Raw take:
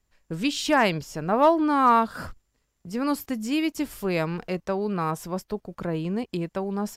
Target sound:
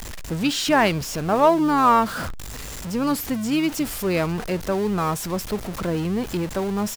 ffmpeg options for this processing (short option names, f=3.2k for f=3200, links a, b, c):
-filter_complex "[0:a]aeval=exprs='val(0)+0.5*0.0335*sgn(val(0))':c=same,asplit=2[a][b];[b]asetrate=22050,aresample=44100,atempo=2,volume=-17dB[c];[a][c]amix=inputs=2:normalize=0,volume=1.5dB"